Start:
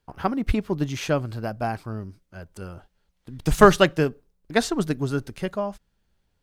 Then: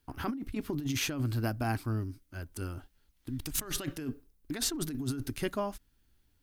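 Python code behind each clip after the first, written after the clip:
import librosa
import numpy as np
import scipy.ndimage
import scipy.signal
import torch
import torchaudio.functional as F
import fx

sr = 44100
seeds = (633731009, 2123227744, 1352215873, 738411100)

y = fx.curve_eq(x, sr, hz=(120.0, 190.0, 270.0, 500.0, 1400.0, 7700.0, 12000.0), db=(0, -10, 6, -10, -3, 1, 8))
y = fx.over_compress(y, sr, threshold_db=-30.0, ratio=-1.0)
y = y * 10.0 ** (-3.5 / 20.0)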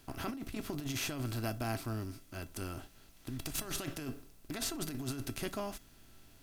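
y = fx.bin_compress(x, sr, power=0.6)
y = fx.comb_fb(y, sr, f0_hz=670.0, decay_s=0.2, harmonics='all', damping=0.0, mix_pct=70)
y = y * 10.0 ** (2.0 / 20.0)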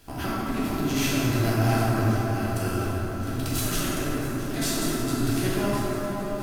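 y = fx.echo_swing(x, sr, ms=1115, ratio=1.5, feedback_pct=49, wet_db=-14)
y = fx.rev_plate(y, sr, seeds[0], rt60_s=4.8, hf_ratio=0.3, predelay_ms=0, drr_db=-9.5)
y = y * 10.0 ** (3.5 / 20.0)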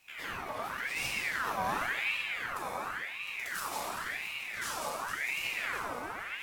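y = fx.ring_lfo(x, sr, carrier_hz=1700.0, swing_pct=50, hz=0.92)
y = y * 10.0 ** (-8.0 / 20.0)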